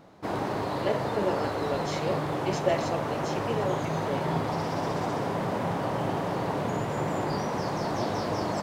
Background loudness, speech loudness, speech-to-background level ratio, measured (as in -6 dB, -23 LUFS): -30.0 LUFS, -33.5 LUFS, -3.5 dB